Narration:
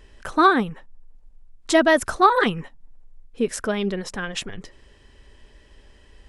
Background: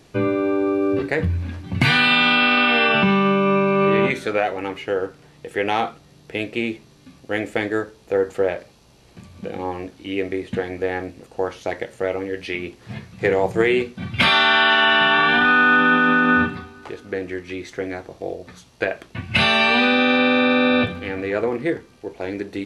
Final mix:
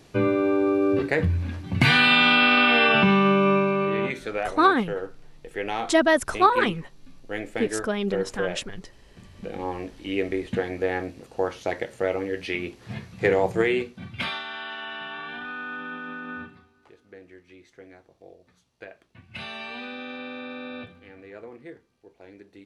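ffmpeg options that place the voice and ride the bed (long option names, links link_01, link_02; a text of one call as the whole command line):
ffmpeg -i stem1.wav -i stem2.wav -filter_complex "[0:a]adelay=4200,volume=-2.5dB[link_01];[1:a]volume=4.5dB,afade=type=out:start_time=3.46:duration=0.41:silence=0.473151,afade=type=in:start_time=9.07:duration=0.93:silence=0.501187,afade=type=out:start_time=13.32:duration=1.11:silence=0.125893[link_02];[link_01][link_02]amix=inputs=2:normalize=0" out.wav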